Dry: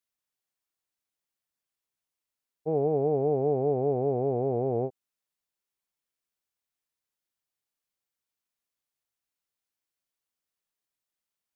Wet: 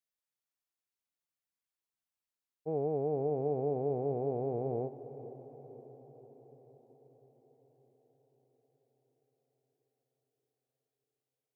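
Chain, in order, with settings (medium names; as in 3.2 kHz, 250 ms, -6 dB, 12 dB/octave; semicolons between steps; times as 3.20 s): echo that smears into a reverb 485 ms, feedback 61%, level -14 dB; trim -7 dB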